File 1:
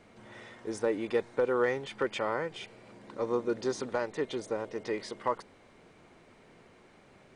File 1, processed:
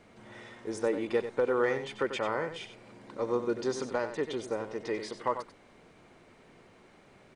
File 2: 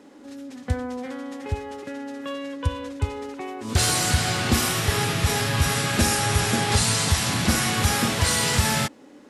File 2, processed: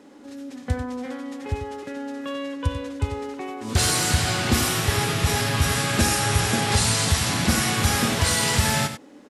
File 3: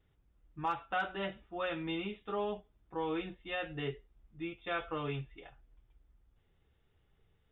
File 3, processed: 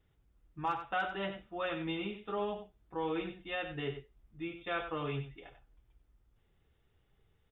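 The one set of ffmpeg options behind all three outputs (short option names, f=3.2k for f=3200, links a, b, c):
-af "aecho=1:1:93:0.316"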